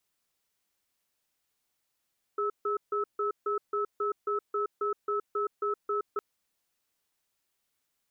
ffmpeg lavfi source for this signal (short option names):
-f lavfi -i "aevalsrc='0.0335*(sin(2*PI*412*t)+sin(2*PI*1300*t))*clip(min(mod(t,0.27),0.12-mod(t,0.27))/0.005,0,1)':d=3.81:s=44100"